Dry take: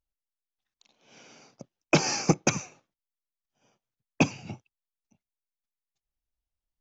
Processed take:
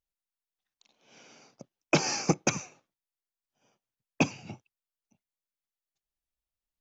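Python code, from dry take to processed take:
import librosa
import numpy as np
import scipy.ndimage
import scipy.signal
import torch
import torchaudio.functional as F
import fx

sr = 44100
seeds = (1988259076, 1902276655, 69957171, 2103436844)

y = fx.low_shelf(x, sr, hz=110.0, db=-5.5)
y = y * librosa.db_to_amplitude(-2.0)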